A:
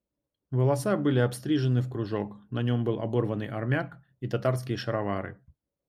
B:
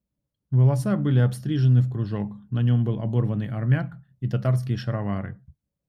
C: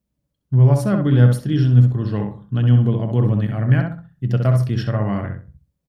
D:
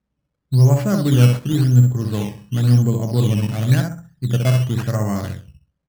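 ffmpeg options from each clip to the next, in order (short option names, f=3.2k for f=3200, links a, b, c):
-af "lowshelf=f=250:t=q:w=1.5:g=8.5,volume=-2dB"
-filter_complex "[0:a]asplit=2[a][b];[b]adelay=65,lowpass=f=1.9k:p=1,volume=-4dB,asplit=2[c][d];[d]adelay=65,lowpass=f=1.9k:p=1,volume=0.29,asplit=2[e][f];[f]adelay=65,lowpass=f=1.9k:p=1,volume=0.29,asplit=2[g][h];[h]adelay=65,lowpass=f=1.9k:p=1,volume=0.29[i];[a][c][e][g][i]amix=inputs=5:normalize=0,volume=4.5dB"
-af "acrusher=samples=11:mix=1:aa=0.000001:lfo=1:lforange=11:lforate=0.94"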